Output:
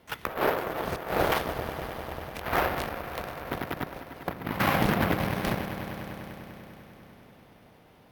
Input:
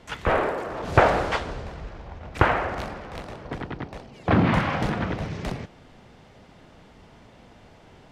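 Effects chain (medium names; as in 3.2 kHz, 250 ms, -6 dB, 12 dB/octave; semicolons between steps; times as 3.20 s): bass shelf 68 Hz -8.5 dB; compressor with a negative ratio -25 dBFS, ratio -0.5; on a send: echo with a slow build-up 99 ms, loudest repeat 5, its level -13 dB; on the sum: careless resampling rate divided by 3×, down filtered, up hold; Chebyshev shaper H 7 -20 dB, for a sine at -11.5 dBFS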